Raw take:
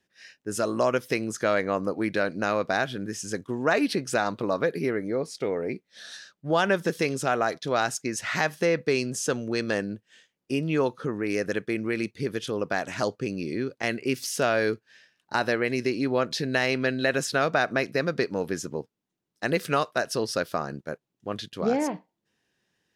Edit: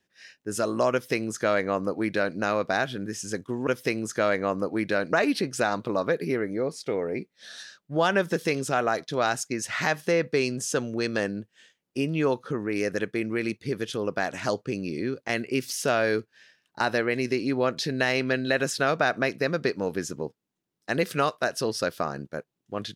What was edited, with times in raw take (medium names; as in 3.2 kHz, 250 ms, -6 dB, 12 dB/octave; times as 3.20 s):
0.92–2.38 s: copy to 3.67 s